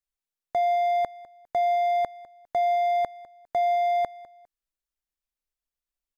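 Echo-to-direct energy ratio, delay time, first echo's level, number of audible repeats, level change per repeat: -18.5 dB, 0.202 s, -19.0 dB, 2, -11.0 dB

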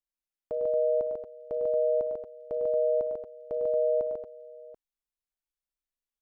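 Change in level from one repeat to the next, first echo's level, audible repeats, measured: no steady repeat, -18.5 dB, 5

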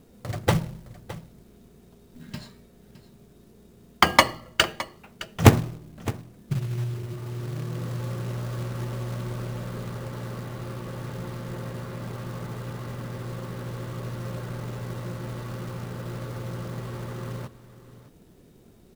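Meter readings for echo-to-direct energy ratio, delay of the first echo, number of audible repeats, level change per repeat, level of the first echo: -16.5 dB, 0.614 s, 1, no steady repeat, -16.5 dB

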